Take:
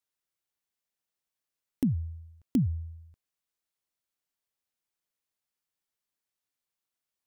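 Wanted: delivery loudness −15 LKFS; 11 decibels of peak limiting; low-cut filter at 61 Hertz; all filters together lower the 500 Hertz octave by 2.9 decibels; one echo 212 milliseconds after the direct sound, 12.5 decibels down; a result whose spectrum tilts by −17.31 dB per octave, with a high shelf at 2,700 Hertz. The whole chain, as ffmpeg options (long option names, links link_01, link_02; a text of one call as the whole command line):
ffmpeg -i in.wav -af "highpass=61,equalizer=frequency=500:width_type=o:gain=-5,highshelf=frequency=2700:gain=3.5,alimiter=level_in=5dB:limit=-24dB:level=0:latency=1,volume=-5dB,aecho=1:1:212:0.237,volume=23.5dB" out.wav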